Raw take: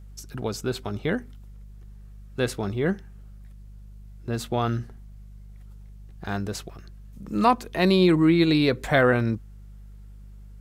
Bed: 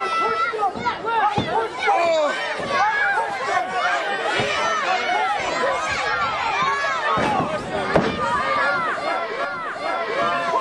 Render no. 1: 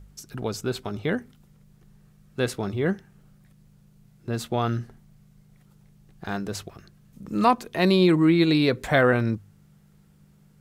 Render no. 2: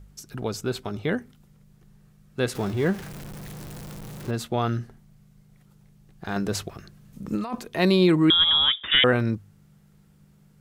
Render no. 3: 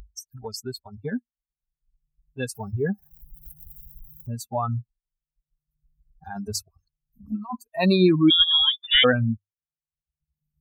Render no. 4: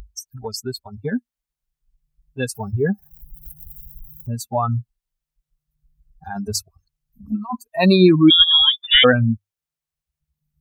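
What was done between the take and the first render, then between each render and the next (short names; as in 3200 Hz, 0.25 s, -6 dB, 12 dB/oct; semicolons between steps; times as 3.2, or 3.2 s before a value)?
de-hum 50 Hz, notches 2
2.55–4.31 zero-crossing step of -33.5 dBFS; 6.36–7.6 negative-ratio compressor -27 dBFS; 8.3–9.04 inverted band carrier 3600 Hz
per-bin expansion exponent 3; in parallel at -2.5 dB: upward compressor, threshold -26 dBFS
gain +5.5 dB; limiter -2 dBFS, peak gain reduction 2 dB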